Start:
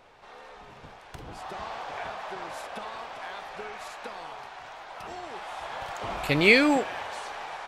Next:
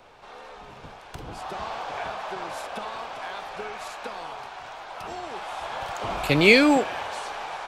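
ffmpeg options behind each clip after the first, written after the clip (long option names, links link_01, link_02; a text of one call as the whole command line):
ffmpeg -i in.wav -filter_complex "[0:a]equalizer=frequency=1900:width_type=o:width=0.27:gain=-4,acrossover=split=150|1100|1900[link_01][link_02][link_03][link_04];[link_03]asoftclip=type=tanh:threshold=-31.5dB[link_05];[link_01][link_02][link_05][link_04]amix=inputs=4:normalize=0,volume=4dB" out.wav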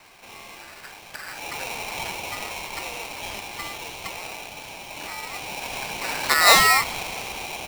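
ffmpeg -i in.wav -af "lowpass=frequency=5100:width=0.5412,lowpass=frequency=5100:width=1.3066,aeval=exprs='val(0)*sgn(sin(2*PI*1600*n/s))':channel_layout=same,volume=1dB" out.wav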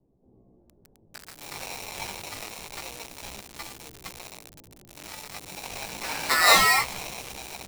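ffmpeg -i in.wav -filter_complex "[0:a]flanger=delay=15:depth=5.6:speed=0.28,acrossover=split=400[link_01][link_02];[link_02]aeval=exprs='val(0)*gte(abs(val(0)),0.0282)':channel_layout=same[link_03];[link_01][link_03]amix=inputs=2:normalize=0" out.wav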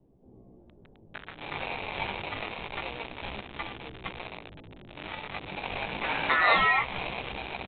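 ffmpeg -i in.wav -af "acompressor=threshold=-29dB:ratio=2,aresample=8000,aresample=44100,volume=5dB" out.wav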